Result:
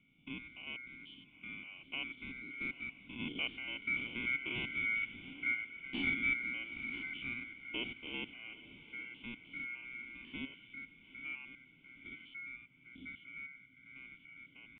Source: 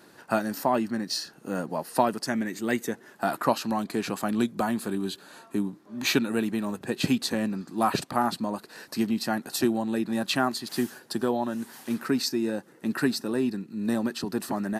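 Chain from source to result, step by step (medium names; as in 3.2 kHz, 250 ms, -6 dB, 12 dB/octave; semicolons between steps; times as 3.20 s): spectrogram pixelated in time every 100 ms; Doppler pass-by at 5.27 s, 6 m/s, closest 6.1 m; resonant low shelf 210 Hz -13.5 dB, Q 3; pitch shift +2 st; ring modulator 1.8 kHz; band noise 110–190 Hz -79 dBFS; cascade formant filter i; on a send: echo that smears into a reverb 841 ms, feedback 45%, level -15.5 dB; on the sum: trim +13.5 dB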